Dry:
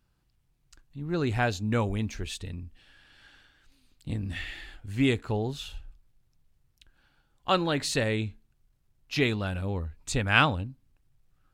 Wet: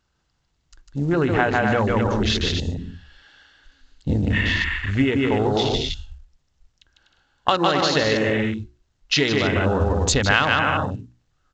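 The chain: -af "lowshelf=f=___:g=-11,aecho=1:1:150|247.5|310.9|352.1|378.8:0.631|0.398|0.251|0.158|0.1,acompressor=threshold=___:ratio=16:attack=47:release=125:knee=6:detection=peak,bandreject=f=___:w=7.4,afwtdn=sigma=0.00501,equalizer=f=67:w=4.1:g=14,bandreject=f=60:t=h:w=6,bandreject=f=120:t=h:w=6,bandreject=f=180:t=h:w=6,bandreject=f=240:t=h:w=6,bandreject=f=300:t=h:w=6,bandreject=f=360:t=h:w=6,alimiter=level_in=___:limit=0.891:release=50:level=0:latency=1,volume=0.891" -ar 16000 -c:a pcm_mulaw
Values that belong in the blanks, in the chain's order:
200, 0.0112, 2.4k, 11.2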